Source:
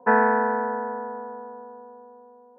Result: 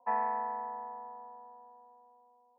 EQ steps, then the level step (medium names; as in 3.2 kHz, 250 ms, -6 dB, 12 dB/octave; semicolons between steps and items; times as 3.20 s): high-pass 450 Hz 12 dB/octave; treble shelf 2.3 kHz -8.5 dB; static phaser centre 1.5 kHz, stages 6; -8.0 dB